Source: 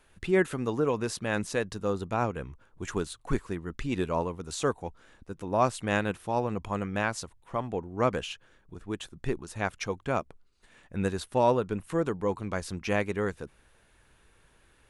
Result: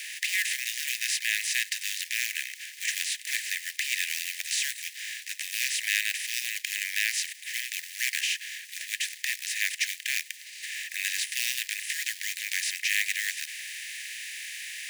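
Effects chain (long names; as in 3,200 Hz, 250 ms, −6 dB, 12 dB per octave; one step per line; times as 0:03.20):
compressor on every frequency bin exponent 0.4
floating-point word with a short mantissa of 2 bits
Butterworth high-pass 1,800 Hz 96 dB per octave
level +5 dB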